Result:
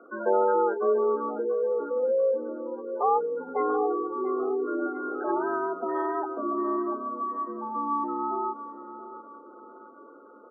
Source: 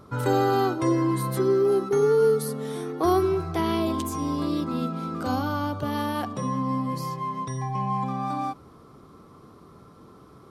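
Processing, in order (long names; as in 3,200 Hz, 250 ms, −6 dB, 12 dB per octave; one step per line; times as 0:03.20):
gate on every frequency bin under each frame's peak −15 dB strong
single-sideband voice off tune +92 Hz 190–2,000 Hz
0:01.34–0:03.49: comb filter 1.1 ms, depth 51%
repeating echo 687 ms, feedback 42%, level −13 dB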